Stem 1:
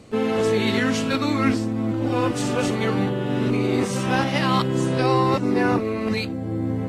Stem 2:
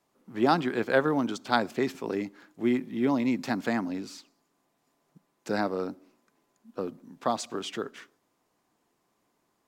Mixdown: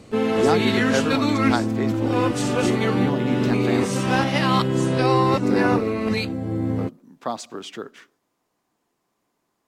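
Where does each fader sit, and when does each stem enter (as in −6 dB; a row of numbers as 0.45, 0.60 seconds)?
+1.0, 0.0 decibels; 0.00, 0.00 seconds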